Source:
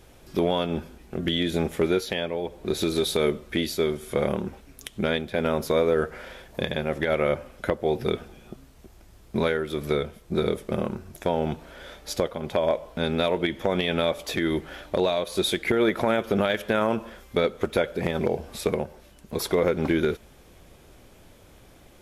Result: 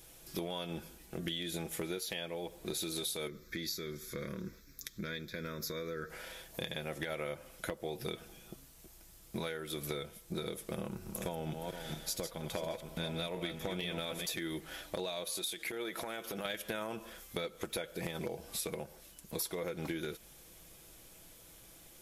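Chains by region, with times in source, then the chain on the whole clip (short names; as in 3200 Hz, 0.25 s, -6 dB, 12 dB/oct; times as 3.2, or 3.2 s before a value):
3.27–6.1 compressor 2:1, threshold -25 dBFS + fixed phaser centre 2900 Hz, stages 6
10.78–14.26 regenerating reverse delay 0.234 s, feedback 40%, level -7 dB + tone controls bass +4 dB, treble 0 dB
15.3–16.45 low shelf 160 Hz -10.5 dB + compressor 3:1, threshold -28 dBFS
whole clip: pre-emphasis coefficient 0.8; comb 6.1 ms, depth 38%; compressor, threshold -39 dBFS; gain +4 dB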